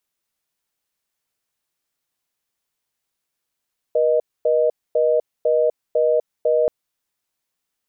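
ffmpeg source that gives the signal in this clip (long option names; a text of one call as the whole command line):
ffmpeg -f lavfi -i "aevalsrc='0.141*(sin(2*PI*480*t)+sin(2*PI*620*t))*clip(min(mod(t,0.5),0.25-mod(t,0.5))/0.005,0,1)':duration=2.73:sample_rate=44100" out.wav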